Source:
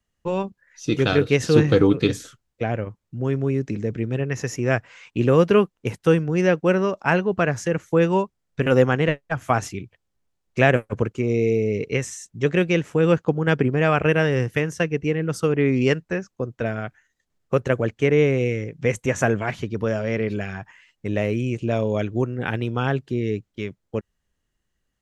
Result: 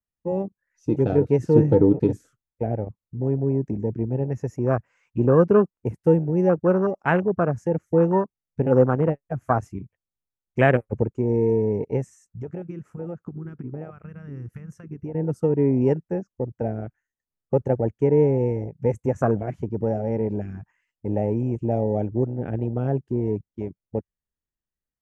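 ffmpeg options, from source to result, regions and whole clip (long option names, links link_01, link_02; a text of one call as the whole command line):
ffmpeg -i in.wav -filter_complex "[0:a]asettb=1/sr,asplit=3[link_01][link_02][link_03];[link_01]atrim=end=12.134[link_04];[link_02]atrim=start=12.13:end=15.15,asetpts=PTS-STARTPTS,afade=type=in:duration=0.004:curve=qsin,afade=type=out:start_time=3.016:duration=0.004:curve=qsin,equalizer=frequency=1300:width=3.1:gain=9.5,acompressor=threshold=-27dB:ratio=10:attack=3.2:release=140:knee=1:detection=peak[link_05];[link_03]atrim=start=15.146[link_06];[link_04][link_05]acrossfade=duration=0.004:curve1=hsin:curve2=qsin[link_07];[link_07][link_06]acrossfade=duration=0.004:curve1=qsin:curve2=hsin,afwtdn=0.0794,equalizer=frequency=3700:width_type=o:width=0.91:gain=-13.5" out.wav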